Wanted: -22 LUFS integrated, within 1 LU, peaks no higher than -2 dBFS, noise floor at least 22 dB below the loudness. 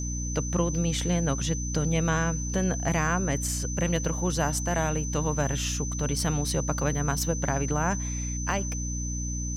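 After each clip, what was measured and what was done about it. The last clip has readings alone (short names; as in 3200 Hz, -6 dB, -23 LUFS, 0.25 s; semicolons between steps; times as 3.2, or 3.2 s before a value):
hum 60 Hz; harmonics up to 300 Hz; hum level -29 dBFS; steady tone 6100 Hz; tone level -35 dBFS; loudness -27.5 LUFS; peak -10.5 dBFS; loudness target -22.0 LUFS
-> notches 60/120/180/240/300 Hz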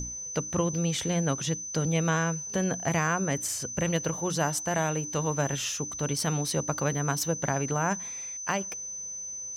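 hum none; steady tone 6100 Hz; tone level -35 dBFS
-> notch 6100 Hz, Q 30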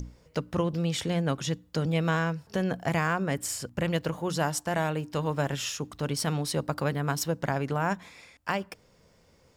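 steady tone none; loudness -30.0 LUFS; peak -12.0 dBFS; loudness target -22.0 LUFS
-> gain +8 dB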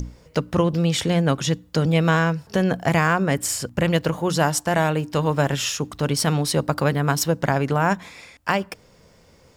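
loudness -22.0 LUFS; peak -4.0 dBFS; noise floor -54 dBFS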